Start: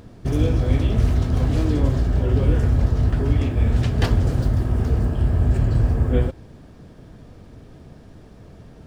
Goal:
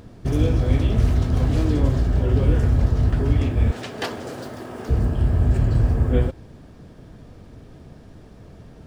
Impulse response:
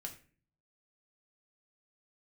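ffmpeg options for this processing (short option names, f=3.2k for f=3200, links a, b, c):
-filter_complex "[0:a]asettb=1/sr,asplit=3[a][b][c];[a]atrim=end=3.714[d];[b]atrim=start=3.71:end=4.89,asetpts=PTS-STARTPTS,afade=t=in:d=0.004:c=qsin,afade=t=out:st=1.176:d=0.004:c=qsin,highpass=370[e];[c]atrim=start=4.886[f];[d][e]acrossfade=d=0.004:c1=hsin:c2=qsin[g];[g][f]acrossfade=d=0.004:c1=qsin:c2=hsin"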